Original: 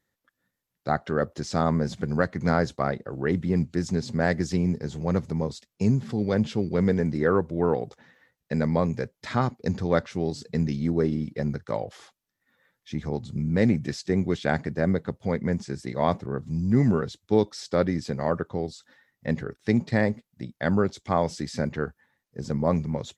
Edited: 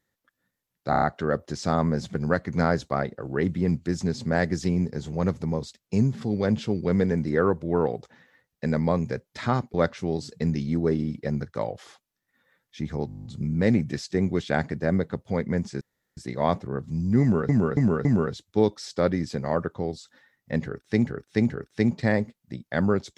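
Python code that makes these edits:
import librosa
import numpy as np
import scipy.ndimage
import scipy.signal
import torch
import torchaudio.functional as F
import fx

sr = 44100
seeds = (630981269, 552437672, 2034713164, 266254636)

y = fx.edit(x, sr, fx.stutter(start_s=0.9, slice_s=0.03, count=5),
    fx.cut(start_s=9.62, length_s=0.25),
    fx.stutter(start_s=13.2, slice_s=0.02, count=10),
    fx.insert_room_tone(at_s=15.76, length_s=0.36),
    fx.repeat(start_s=16.8, length_s=0.28, count=4),
    fx.repeat(start_s=19.39, length_s=0.43, count=3), tone=tone)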